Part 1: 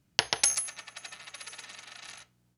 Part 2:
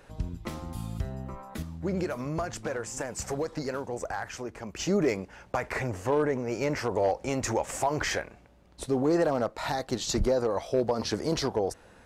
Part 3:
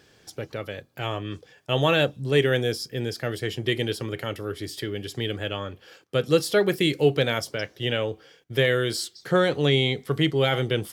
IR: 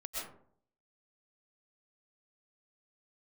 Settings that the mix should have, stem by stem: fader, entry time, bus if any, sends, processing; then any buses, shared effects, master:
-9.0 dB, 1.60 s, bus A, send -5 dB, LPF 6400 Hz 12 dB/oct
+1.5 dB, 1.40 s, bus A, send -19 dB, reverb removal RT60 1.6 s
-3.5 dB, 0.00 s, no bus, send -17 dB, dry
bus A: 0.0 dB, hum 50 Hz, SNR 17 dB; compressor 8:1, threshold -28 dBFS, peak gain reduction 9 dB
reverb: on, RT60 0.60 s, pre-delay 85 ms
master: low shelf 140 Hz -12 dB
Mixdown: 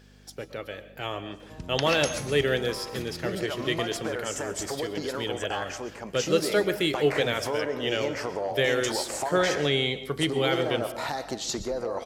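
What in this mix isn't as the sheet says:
stem 2: missing reverb removal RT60 1.6 s; reverb return +6.5 dB

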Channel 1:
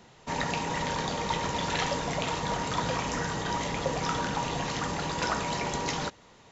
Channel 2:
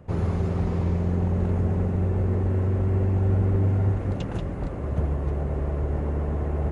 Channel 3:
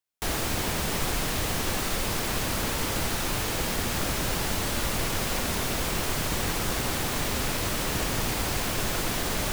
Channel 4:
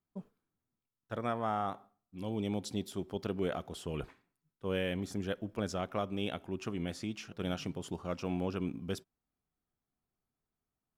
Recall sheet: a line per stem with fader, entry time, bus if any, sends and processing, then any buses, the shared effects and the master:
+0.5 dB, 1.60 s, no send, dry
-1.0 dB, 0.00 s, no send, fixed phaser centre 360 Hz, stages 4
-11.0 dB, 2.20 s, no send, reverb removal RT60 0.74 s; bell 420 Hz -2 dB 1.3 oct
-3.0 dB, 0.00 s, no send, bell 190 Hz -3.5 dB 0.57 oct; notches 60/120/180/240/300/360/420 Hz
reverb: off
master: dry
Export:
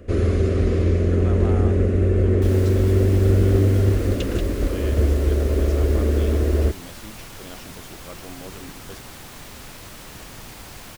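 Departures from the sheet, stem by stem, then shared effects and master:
stem 1: muted; stem 2 -1.0 dB -> +10.5 dB; stem 3: missing reverb removal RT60 0.74 s

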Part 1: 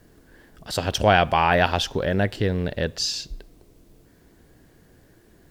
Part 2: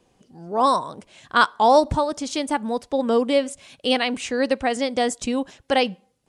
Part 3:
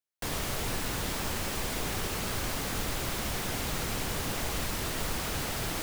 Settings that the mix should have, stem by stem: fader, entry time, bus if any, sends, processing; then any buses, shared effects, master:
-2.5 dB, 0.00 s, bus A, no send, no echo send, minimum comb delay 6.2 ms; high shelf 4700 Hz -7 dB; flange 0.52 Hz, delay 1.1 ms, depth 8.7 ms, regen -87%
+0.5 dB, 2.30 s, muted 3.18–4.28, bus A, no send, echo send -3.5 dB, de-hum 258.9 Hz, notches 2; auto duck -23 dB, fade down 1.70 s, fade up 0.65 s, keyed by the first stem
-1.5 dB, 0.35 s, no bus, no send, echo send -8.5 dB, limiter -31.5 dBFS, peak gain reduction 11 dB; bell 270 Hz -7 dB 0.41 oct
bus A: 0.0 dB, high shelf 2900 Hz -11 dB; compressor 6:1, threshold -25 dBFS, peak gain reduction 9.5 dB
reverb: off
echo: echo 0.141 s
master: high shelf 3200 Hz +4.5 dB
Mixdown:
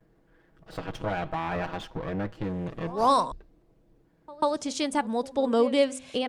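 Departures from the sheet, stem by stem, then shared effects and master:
stem 3: muted; master: missing high shelf 3200 Hz +4.5 dB

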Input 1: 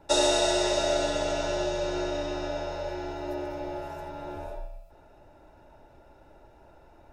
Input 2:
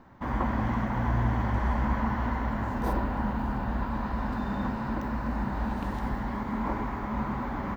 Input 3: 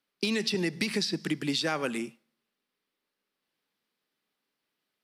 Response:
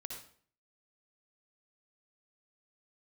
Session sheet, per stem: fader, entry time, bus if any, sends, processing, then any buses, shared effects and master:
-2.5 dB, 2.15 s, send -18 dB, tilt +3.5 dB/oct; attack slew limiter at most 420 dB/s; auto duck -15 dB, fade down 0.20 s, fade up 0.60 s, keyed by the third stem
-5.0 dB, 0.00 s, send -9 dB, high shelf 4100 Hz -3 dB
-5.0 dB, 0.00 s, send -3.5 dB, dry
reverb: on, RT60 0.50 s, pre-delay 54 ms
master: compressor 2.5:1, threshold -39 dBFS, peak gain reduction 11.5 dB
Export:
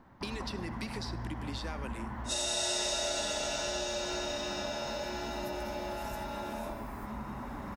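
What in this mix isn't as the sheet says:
stem 1 -2.5 dB -> +8.0 dB; stem 2: missing high shelf 4100 Hz -3 dB; reverb return -7.5 dB

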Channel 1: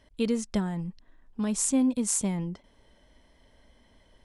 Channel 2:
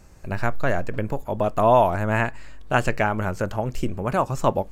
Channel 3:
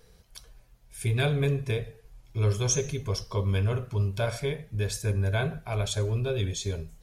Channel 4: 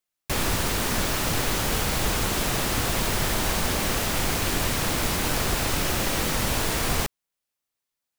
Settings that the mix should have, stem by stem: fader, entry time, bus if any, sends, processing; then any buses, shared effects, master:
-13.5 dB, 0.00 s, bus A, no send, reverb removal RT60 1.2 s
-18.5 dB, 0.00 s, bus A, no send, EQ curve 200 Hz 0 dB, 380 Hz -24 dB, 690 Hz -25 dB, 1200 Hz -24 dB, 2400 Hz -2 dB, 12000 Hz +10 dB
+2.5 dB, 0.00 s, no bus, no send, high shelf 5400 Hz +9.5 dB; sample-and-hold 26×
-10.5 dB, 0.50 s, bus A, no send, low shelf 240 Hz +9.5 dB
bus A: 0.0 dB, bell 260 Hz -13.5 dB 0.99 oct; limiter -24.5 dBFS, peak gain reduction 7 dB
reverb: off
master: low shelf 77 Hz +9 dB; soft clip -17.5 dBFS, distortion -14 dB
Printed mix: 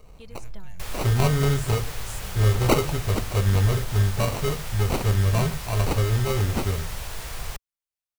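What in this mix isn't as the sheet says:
stem 4: missing low shelf 240 Hz +9.5 dB; master: missing soft clip -17.5 dBFS, distortion -14 dB

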